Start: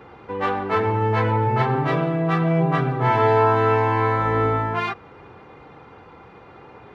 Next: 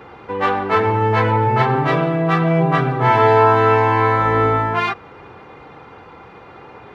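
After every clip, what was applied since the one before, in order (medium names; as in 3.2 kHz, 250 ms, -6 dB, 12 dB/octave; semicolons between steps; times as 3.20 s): bass shelf 470 Hz -3.5 dB; trim +6 dB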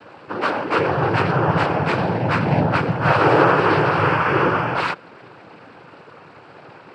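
noise-vocoded speech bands 8; trim -2 dB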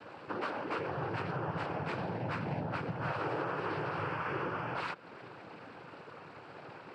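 compression 4:1, threshold -29 dBFS, peak gain reduction 16 dB; trim -6.5 dB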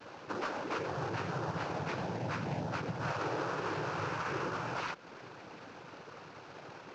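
CVSD coder 32 kbps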